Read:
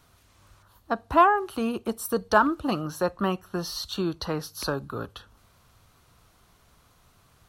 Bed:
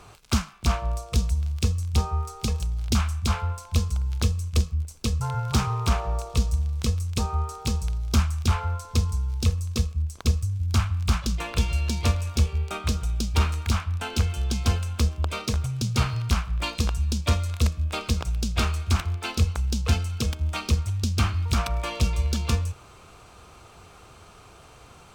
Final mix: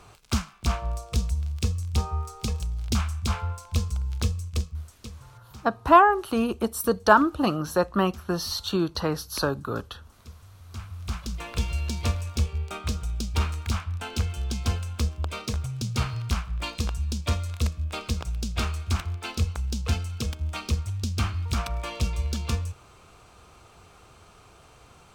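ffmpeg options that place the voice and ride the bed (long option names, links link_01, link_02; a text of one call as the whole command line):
ffmpeg -i stem1.wav -i stem2.wav -filter_complex "[0:a]adelay=4750,volume=3dB[link_01];[1:a]volume=17.5dB,afade=type=out:start_time=4.26:duration=0.99:silence=0.0891251,afade=type=in:start_time=10.63:duration=1.02:silence=0.1[link_02];[link_01][link_02]amix=inputs=2:normalize=0" out.wav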